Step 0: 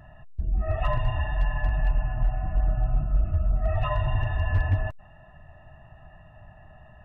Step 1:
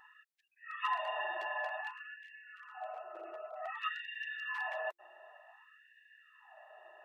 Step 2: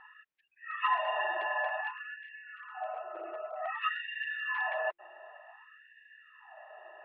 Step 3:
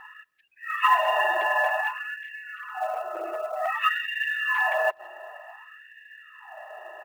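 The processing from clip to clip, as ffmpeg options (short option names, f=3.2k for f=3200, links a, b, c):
-af "afftfilt=real='re*gte(b*sr/1024,330*pow(1600/330,0.5+0.5*sin(2*PI*0.54*pts/sr)))':imag='im*gte(b*sr/1024,330*pow(1600/330,0.5+0.5*sin(2*PI*0.54*pts/sr)))':win_size=1024:overlap=0.75,volume=-1dB"
-af "lowpass=f=3k:w=0.5412,lowpass=f=3k:w=1.3066,volume=5.5dB"
-filter_complex "[0:a]asplit=2[a][b];[b]adelay=170,highpass=300,lowpass=3.4k,asoftclip=type=hard:threshold=-27dB,volume=-29dB[c];[a][c]amix=inputs=2:normalize=0,acrusher=bits=7:mode=log:mix=0:aa=0.000001,volume=9dB"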